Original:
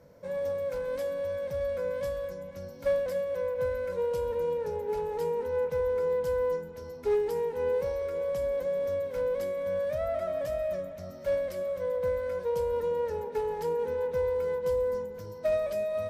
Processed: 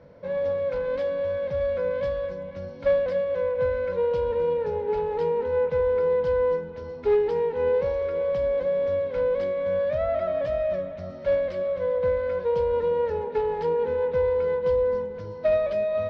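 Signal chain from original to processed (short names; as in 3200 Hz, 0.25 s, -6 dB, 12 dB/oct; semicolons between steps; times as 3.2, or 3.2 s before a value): LPF 4100 Hz 24 dB/oct; gain +5.5 dB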